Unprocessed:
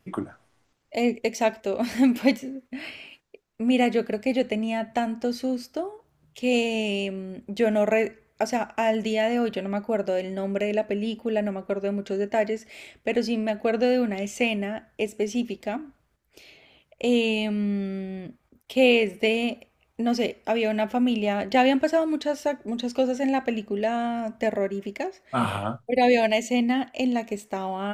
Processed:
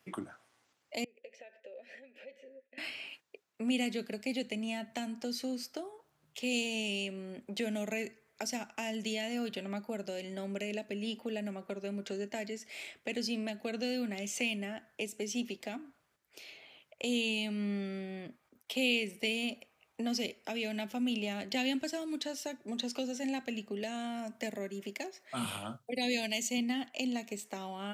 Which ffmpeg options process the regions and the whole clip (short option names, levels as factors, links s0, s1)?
-filter_complex "[0:a]asettb=1/sr,asplit=3[s0][s1][s2];[s0]atrim=end=1.044[s3];[s1]atrim=start=1.04:end=2.78,asetpts=PTS-STARTPTS,afade=t=in:d=0.004:c=qsin,afade=t=out:st=1.736:d=0.004:c=qsin,acompressor=threshold=0.0251:ratio=16:attack=3.2:release=140:knee=1:detection=peak,asplit=3[s4][s5][s6];[s4]bandpass=f=530:t=q:w=8,volume=1[s7];[s5]bandpass=f=1840:t=q:w=8,volume=0.501[s8];[s6]bandpass=f=2480:t=q:w=8,volume=0.355[s9];[s7][s8][s9]amix=inputs=3:normalize=0[s10];[s2]atrim=start=2.776[s11];[s3][s10]acrossfade=d=0.004:c1=hsin:c2=qsin[s12];[s12][s11]acrossfade=d=0.004:c1=qsin:c2=hsin,asettb=1/sr,asplit=3[s13][s14][s15];[s13]atrim=end=23.834[s16];[s14]atrim=start=23.83:end=26.58,asetpts=PTS-STARTPTS,afade=t=in:d=0.004:c=qsin,afade=t=out:st=2.746:d=0.004:c=qsin,highpass=96,highshelf=f=8200:g=5[s17];[s15]atrim=start=26.576[s18];[s16][s17]acrossfade=d=0.004:c1=hsin:c2=qsin[s19];[s19][s18]acrossfade=d=0.004:c1=qsin:c2=hsin,lowshelf=f=430:g=-10.5,acrossover=split=300|3000[s20][s21][s22];[s21]acompressor=threshold=0.00794:ratio=6[s23];[s20][s23][s22]amix=inputs=3:normalize=0,highpass=110"